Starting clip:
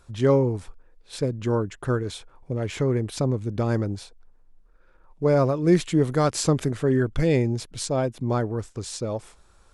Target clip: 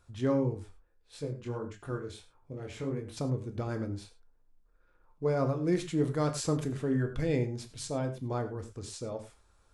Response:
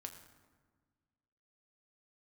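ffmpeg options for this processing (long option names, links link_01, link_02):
-filter_complex "[1:a]atrim=start_sample=2205,afade=type=out:start_time=0.16:duration=0.01,atrim=end_sample=7497[link_01];[0:a][link_01]afir=irnorm=-1:irlink=0,asettb=1/sr,asplit=3[link_02][link_03][link_04];[link_02]atrim=end=0.544[link_05];[link_03]atrim=start=0.54:end=3.17,asetpts=PTS-STARTPTS,afade=type=in:duration=0.004:curve=qsin,afade=type=out:start_time=2.626:duration=0.004:curve=qsin,flanger=delay=20:depth=4.5:speed=1.6[link_06];[link_04]atrim=start=3.166[link_07];[link_05][link_06]acrossfade=duration=0.004:curve1=hsin:curve2=qsin[link_08];[link_08][link_07]acrossfade=duration=0.004:curve1=qsin:curve2=hsin,volume=-4dB"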